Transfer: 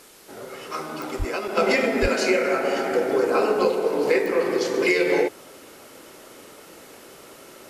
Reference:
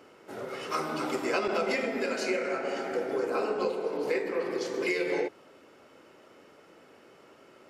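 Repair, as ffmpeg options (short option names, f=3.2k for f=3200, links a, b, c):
-filter_complex "[0:a]adeclick=t=4,asplit=3[a][b][c];[a]afade=t=out:st=1.18:d=0.02[d];[b]highpass=f=140:w=0.5412,highpass=f=140:w=1.3066,afade=t=in:st=1.18:d=0.02,afade=t=out:st=1.3:d=0.02[e];[c]afade=t=in:st=1.3:d=0.02[f];[d][e][f]amix=inputs=3:normalize=0,asplit=3[g][h][i];[g]afade=t=out:st=2.01:d=0.02[j];[h]highpass=f=140:w=0.5412,highpass=f=140:w=1.3066,afade=t=in:st=2.01:d=0.02,afade=t=out:st=2.13:d=0.02[k];[i]afade=t=in:st=2.13:d=0.02[l];[j][k][l]amix=inputs=3:normalize=0,afwtdn=0.0035,asetnsamples=n=441:p=0,asendcmd='1.57 volume volume -9dB',volume=0dB"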